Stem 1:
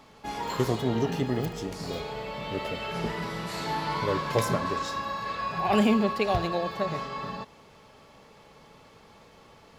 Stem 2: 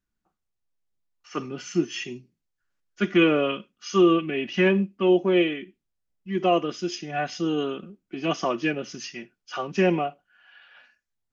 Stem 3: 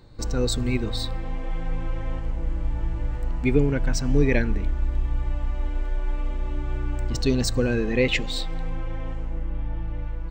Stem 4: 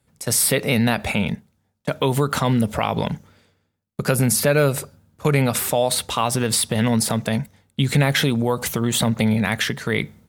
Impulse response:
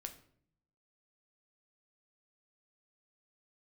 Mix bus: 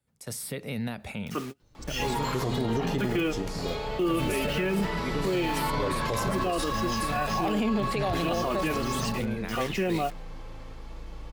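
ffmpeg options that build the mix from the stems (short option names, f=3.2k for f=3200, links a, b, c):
-filter_complex "[0:a]adelay=1750,volume=2dB[a];[1:a]acrusher=bits=6:mix=0:aa=0.000001,volume=-0.5dB[b];[2:a]adelay=1600,volume=-13dB[c];[3:a]acrossover=split=400[d][e];[e]acompressor=threshold=-26dB:ratio=2[f];[d][f]amix=inputs=2:normalize=0,volume=-13dB,asplit=2[g][h];[h]apad=whole_len=499318[i];[b][i]sidechaingate=range=-38dB:threshold=-56dB:ratio=16:detection=peak[j];[a][j][c][g]amix=inputs=4:normalize=0,alimiter=limit=-19dB:level=0:latency=1:release=26"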